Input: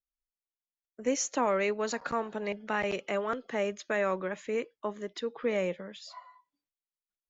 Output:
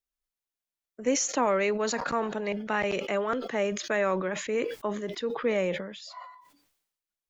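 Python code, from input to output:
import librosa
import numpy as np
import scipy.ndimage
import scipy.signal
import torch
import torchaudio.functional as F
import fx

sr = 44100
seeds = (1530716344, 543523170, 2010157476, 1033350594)

y = fx.sustainer(x, sr, db_per_s=64.0)
y = y * librosa.db_to_amplitude(2.5)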